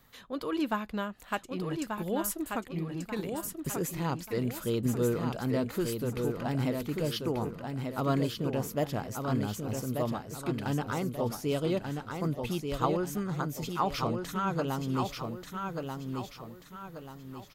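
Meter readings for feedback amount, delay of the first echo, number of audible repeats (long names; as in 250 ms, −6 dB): 39%, 1,186 ms, 4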